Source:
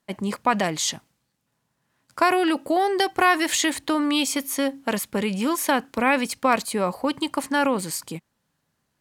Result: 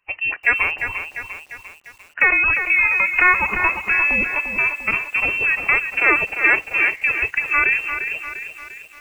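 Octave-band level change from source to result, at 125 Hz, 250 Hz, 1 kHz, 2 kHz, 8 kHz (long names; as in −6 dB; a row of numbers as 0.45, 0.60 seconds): −3.5 dB, −12.5 dB, −2.5 dB, +12.5 dB, below −15 dB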